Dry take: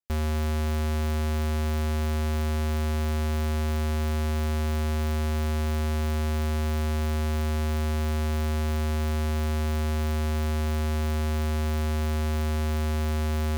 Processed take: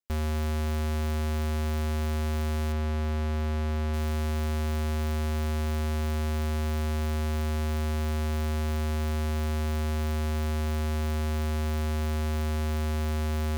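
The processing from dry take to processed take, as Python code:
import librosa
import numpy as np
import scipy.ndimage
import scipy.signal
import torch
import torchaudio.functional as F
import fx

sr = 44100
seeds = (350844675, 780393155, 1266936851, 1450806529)

y = fx.lowpass(x, sr, hz=3500.0, slope=6, at=(2.72, 3.94))
y = F.gain(torch.from_numpy(y), -2.0).numpy()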